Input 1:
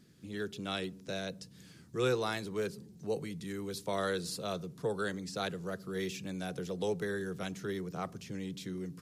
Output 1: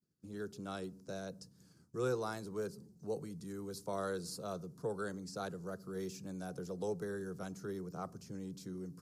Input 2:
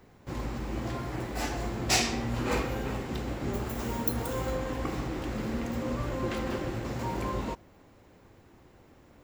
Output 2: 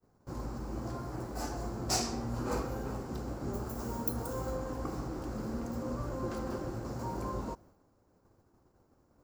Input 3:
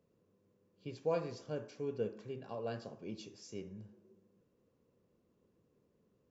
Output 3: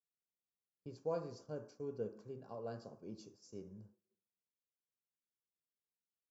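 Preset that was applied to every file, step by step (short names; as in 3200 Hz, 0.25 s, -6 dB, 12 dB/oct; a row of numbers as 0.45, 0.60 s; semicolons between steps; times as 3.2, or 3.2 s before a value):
expander -50 dBFS; band shelf 2600 Hz -12 dB 1.3 oct; gain -4.5 dB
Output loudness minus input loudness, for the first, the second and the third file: -5.0, -5.0, -4.5 LU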